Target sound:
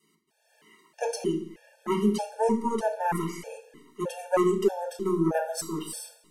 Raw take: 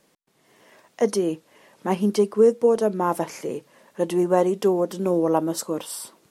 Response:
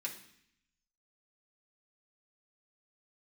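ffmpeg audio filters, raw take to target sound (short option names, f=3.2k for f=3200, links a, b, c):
-filter_complex "[0:a]aeval=exprs='0.473*(cos(1*acos(clip(val(0)/0.473,-1,1)))-cos(1*PI/2))+0.211*(cos(2*acos(clip(val(0)/0.473,-1,1)))-cos(2*PI/2))':c=same[a];[1:a]atrim=start_sample=2205,asetrate=48510,aresample=44100[b];[a][b]afir=irnorm=-1:irlink=0,afftfilt=real='re*gt(sin(2*PI*1.6*pts/sr)*(1-2*mod(floor(b*sr/1024/460),2)),0)':imag='im*gt(sin(2*PI*1.6*pts/sr)*(1-2*mod(floor(b*sr/1024/460),2)),0)':win_size=1024:overlap=0.75"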